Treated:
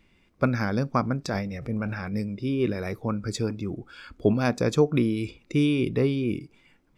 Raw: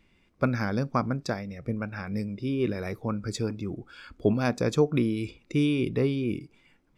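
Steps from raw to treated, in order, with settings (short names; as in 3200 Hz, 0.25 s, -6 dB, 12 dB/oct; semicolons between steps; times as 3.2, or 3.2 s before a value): 1.24–2.13 transient shaper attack -4 dB, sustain +9 dB; gain +2 dB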